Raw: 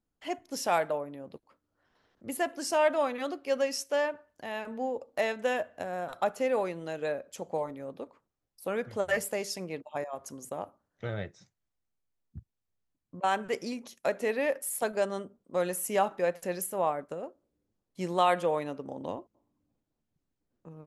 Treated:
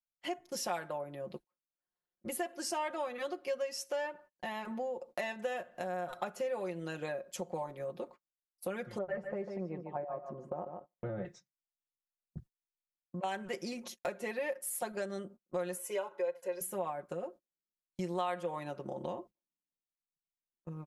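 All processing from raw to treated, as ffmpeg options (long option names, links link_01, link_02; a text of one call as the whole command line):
ffmpeg -i in.wav -filter_complex "[0:a]asettb=1/sr,asplit=3[link_01][link_02][link_03];[link_01]atrim=end=8.984[link_04];[link_02]atrim=start=8.98:end=11.25,asetpts=PTS-STARTPTS,afade=type=in:duration=0.004:curve=qsin,afade=type=out:start_time=2.266:duration=0.004:curve=qsin,lowpass=1000,aecho=1:1:147|294:0.355|0.0568,atrim=end_sample=100107[link_05];[link_03]atrim=start=11.246[link_06];[link_04][link_05]acrossfade=duration=0.004:curve1=hsin:curve2=qsin[link_07];[link_07][link_06]acrossfade=duration=0.004:curve1=qsin:curve2=hsin,asettb=1/sr,asplit=3[link_08][link_09][link_10];[link_08]atrim=end=15.774[link_11];[link_09]atrim=start=15.77:end=16.61,asetpts=PTS-STARTPTS,afade=type=in:duration=0.004:curve=qsin,afade=type=out:start_time=0.836:duration=0.004:curve=qsin,highpass=400,highshelf=frequency=2600:gain=-8.5,aecho=1:1:2:0.78,atrim=end_sample=37044[link_12];[link_10]atrim=start=16.606[link_13];[link_11][link_12]acrossfade=duration=0.004:curve1=hsin:curve2=qsin[link_14];[link_14][link_13]acrossfade=duration=0.004:curve1=qsin:curve2=hsin,agate=range=-31dB:threshold=-50dB:ratio=16:detection=peak,aecho=1:1:5.6:0.83,acompressor=threshold=-38dB:ratio=3,volume=1dB" out.wav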